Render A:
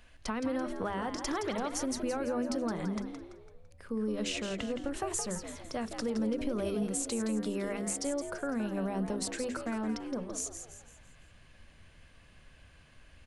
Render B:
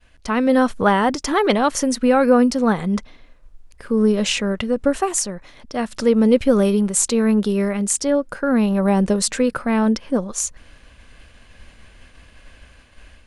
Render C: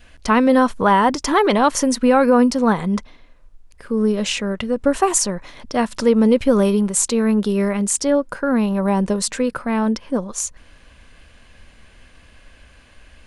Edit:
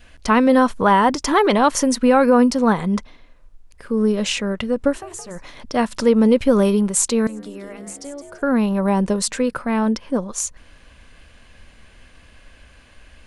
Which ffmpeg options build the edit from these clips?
ffmpeg -i take0.wav -i take1.wav -i take2.wav -filter_complex "[0:a]asplit=2[link_01][link_02];[2:a]asplit=3[link_03][link_04][link_05];[link_03]atrim=end=5.02[link_06];[link_01]atrim=start=4.86:end=5.43[link_07];[link_04]atrim=start=5.27:end=7.272[link_08];[link_02]atrim=start=7.268:end=8.422[link_09];[link_05]atrim=start=8.418[link_10];[link_06][link_07]acrossfade=duration=0.16:curve1=tri:curve2=tri[link_11];[link_11][link_08]acrossfade=duration=0.16:curve1=tri:curve2=tri[link_12];[link_12][link_09]acrossfade=duration=0.004:curve1=hsin:curve2=hsin[link_13];[link_13][link_10]acrossfade=duration=0.004:curve1=hsin:curve2=hsin" out.wav

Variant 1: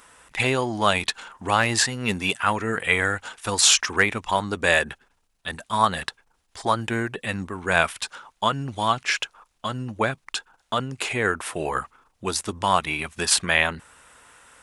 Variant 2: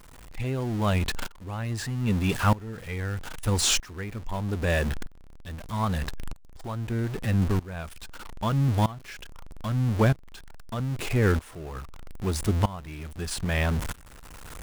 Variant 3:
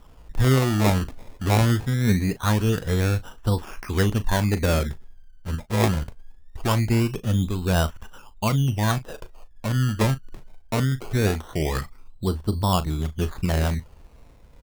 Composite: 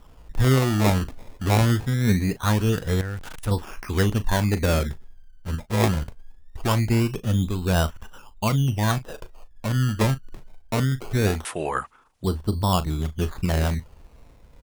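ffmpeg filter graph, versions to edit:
ffmpeg -i take0.wav -i take1.wav -i take2.wav -filter_complex "[2:a]asplit=3[link_01][link_02][link_03];[link_01]atrim=end=3.012[link_04];[1:a]atrim=start=3.008:end=3.512[link_05];[link_02]atrim=start=3.508:end=11.452[link_06];[0:a]atrim=start=11.448:end=12.242[link_07];[link_03]atrim=start=12.238[link_08];[link_04][link_05]acrossfade=duration=0.004:curve1=hsin:curve2=hsin[link_09];[link_09][link_06]acrossfade=duration=0.004:curve1=hsin:curve2=hsin[link_10];[link_10][link_07]acrossfade=duration=0.004:curve1=hsin:curve2=hsin[link_11];[link_11][link_08]acrossfade=duration=0.004:curve1=hsin:curve2=hsin" out.wav

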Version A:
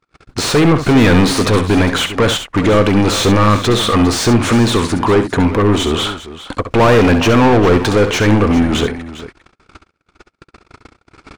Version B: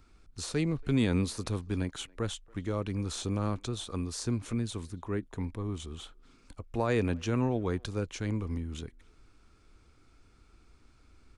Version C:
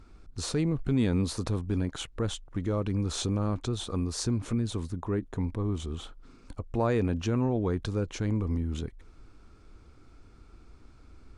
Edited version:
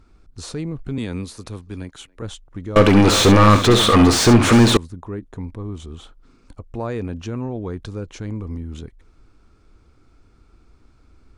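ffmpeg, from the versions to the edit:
ffmpeg -i take0.wav -i take1.wav -i take2.wav -filter_complex "[2:a]asplit=3[link_01][link_02][link_03];[link_01]atrim=end=0.982[link_04];[1:a]atrim=start=0.978:end=2.222[link_05];[link_02]atrim=start=2.218:end=2.762[link_06];[0:a]atrim=start=2.758:end=4.772[link_07];[link_03]atrim=start=4.768[link_08];[link_04][link_05]acrossfade=duration=0.004:curve1=hsin:curve2=hsin[link_09];[link_09][link_06]acrossfade=duration=0.004:curve1=hsin:curve2=hsin[link_10];[link_10][link_07]acrossfade=duration=0.004:curve1=hsin:curve2=hsin[link_11];[link_11][link_08]acrossfade=duration=0.004:curve1=hsin:curve2=hsin" out.wav

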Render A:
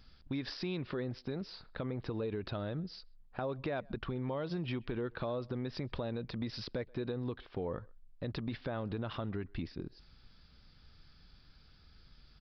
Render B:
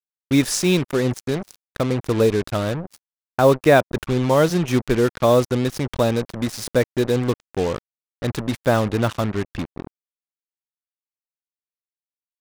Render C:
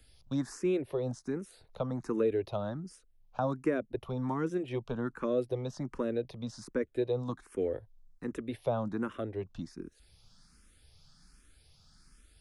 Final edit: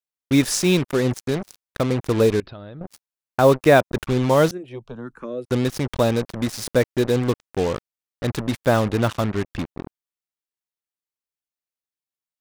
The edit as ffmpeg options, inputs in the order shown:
ffmpeg -i take0.wav -i take1.wav -i take2.wav -filter_complex "[1:a]asplit=3[link_01][link_02][link_03];[link_01]atrim=end=2.402[link_04];[0:a]atrim=start=2.398:end=2.812[link_05];[link_02]atrim=start=2.808:end=4.512[link_06];[2:a]atrim=start=4.508:end=5.452[link_07];[link_03]atrim=start=5.448[link_08];[link_04][link_05]acrossfade=duration=0.004:curve1=hsin:curve2=hsin[link_09];[link_09][link_06]acrossfade=duration=0.004:curve1=hsin:curve2=hsin[link_10];[link_10][link_07]acrossfade=duration=0.004:curve1=hsin:curve2=hsin[link_11];[link_11][link_08]acrossfade=duration=0.004:curve1=hsin:curve2=hsin" out.wav

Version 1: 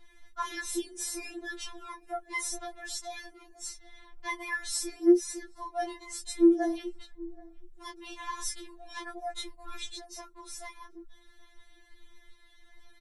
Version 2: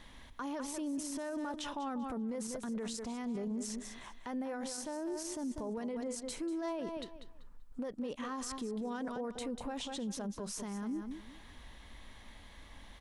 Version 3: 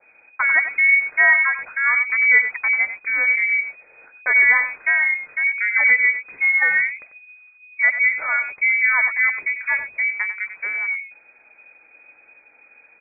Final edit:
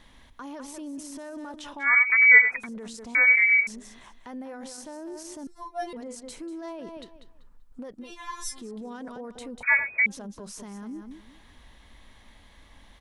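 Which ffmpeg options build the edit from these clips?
ffmpeg -i take0.wav -i take1.wav -i take2.wav -filter_complex "[2:a]asplit=3[link_01][link_02][link_03];[0:a]asplit=2[link_04][link_05];[1:a]asplit=6[link_06][link_07][link_08][link_09][link_10][link_11];[link_06]atrim=end=1.95[link_12];[link_01]atrim=start=1.79:end=2.67[link_13];[link_07]atrim=start=2.51:end=3.152[link_14];[link_02]atrim=start=3.148:end=3.672[link_15];[link_08]atrim=start=3.668:end=5.472[link_16];[link_04]atrim=start=5.468:end=5.932[link_17];[link_09]atrim=start=5.928:end=8.13[link_18];[link_05]atrim=start=7.97:end=8.66[link_19];[link_10]atrim=start=8.5:end=9.632[link_20];[link_03]atrim=start=9.628:end=10.062[link_21];[link_11]atrim=start=10.058[link_22];[link_12][link_13]acrossfade=duration=0.16:curve1=tri:curve2=tri[link_23];[link_23][link_14]acrossfade=duration=0.16:curve1=tri:curve2=tri[link_24];[link_24][link_15]acrossfade=duration=0.004:curve1=hsin:curve2=hsin[link_25];[link_25][link_16]acrossfade=duration=0.004:curve1=hsin:curve2=hsin[link_26];[link_26][link_17]acrossfade=duration=0.004:curve1=hsin:curve2=hsin[link_27];[link_27][link_18]acrossfade=duration=0.004:curve1=hsin:curve2=hsin[link_28];[link_28][link_19]acrossfade=duration=0.16:curve1=tri:curve2=tri[link_29];[link_29][link_20]acrossfade=duration=0.16:curve1=tri:curve2=tri[link_30];[link_30][link_21]acrossfade=duration=0.004:curve1=hsin:curve2=hsin[link_31];[link_31][link_22]acrossfade=duration=0.004:curve1=hsin:curve2=hsin" out.wav

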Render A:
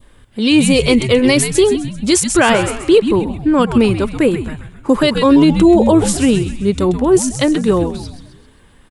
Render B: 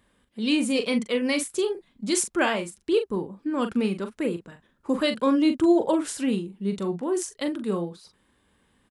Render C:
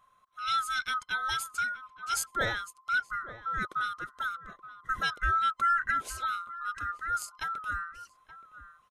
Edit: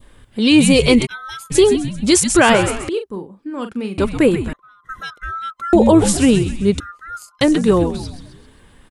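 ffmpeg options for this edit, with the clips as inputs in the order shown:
ffmpeg -i take0.wav -i take1.wav -i take2.wav -filter_complex "[2:a]asplit=3[link_01][link_02][link_03];[0:a]asplit=5[link_04][link_05][link_06][link_07][link_08];[link_04]atrim=end=1.07[link_09];[link_01]atrim=start=1.05:end=1.52[link_10];[link_05]atrim=start=1.5:end=2.892[link_11];[1:a]atrim=start=2.888:end=3.982[link_12];[link_06]atrim=start=3.978:end=4.532[link_13];[link_02]atrim=start=4.528:end=5.732[link_14];[link_07]atrim=start=5.728:end=6.802[link_15];[link_03]atrim=start=6.798:end=7.412[link_16];[link_08]atrim=start=7.408[link_17];[link_09][link_10]acrossfade=duration=0.02:curve1=tri:curve2=tri[link_18];[link_18][link_11]acrossfade=duration=0.02:curve1=tri:curve2=tri[link_19];[link_19][link_12]acrossfade=duration=0.004:curve1=hsin:curve2=hsin[link_20];[link_20][link_13]acrossfade=duration=0.004:curve1=hsin:curve2=hsin[link_21];[link_21][link_14]acrossfade=duration=0.004:curve1=hsin:curve2=hsin[link_22];[link_22][link_15]acrossfade=duration=0.004:curve1=hsin:curve2=hsin[link_23];[link_23][link_16]acrossfade=duration=0.004:curve1=hsin:curve2=hsin[link_24];[link_24][link_17]acrossfade=duration=0.004:curve1=hsin:curve2=hsin" out.wav

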